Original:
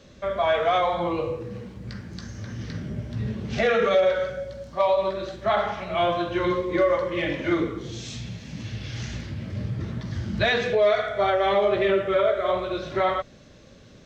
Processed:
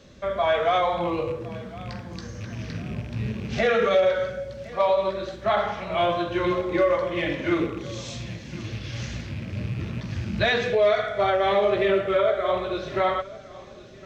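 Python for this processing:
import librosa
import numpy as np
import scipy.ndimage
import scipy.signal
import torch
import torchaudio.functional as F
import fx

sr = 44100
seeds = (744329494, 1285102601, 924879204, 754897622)

p1 = fx.rattle_buzz(x, sr, strikes_db=-32.0, level_db=-33.0)
y = p1 + fx.echo_feedback(p1, sr, ms=1060, feedback_pct=35, wet_db=-19.5, dry=0)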